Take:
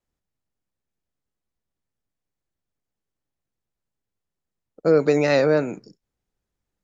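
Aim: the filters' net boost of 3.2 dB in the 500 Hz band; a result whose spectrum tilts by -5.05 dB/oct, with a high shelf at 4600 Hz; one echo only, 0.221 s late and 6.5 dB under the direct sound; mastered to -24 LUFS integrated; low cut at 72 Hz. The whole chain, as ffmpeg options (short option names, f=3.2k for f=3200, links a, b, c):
-af "highpass=72,equalizer=f=500:t=o:g=3.5,highshelf=f=4.6k:g=6,aecho=1:1:221:0.473,volume=-7dB"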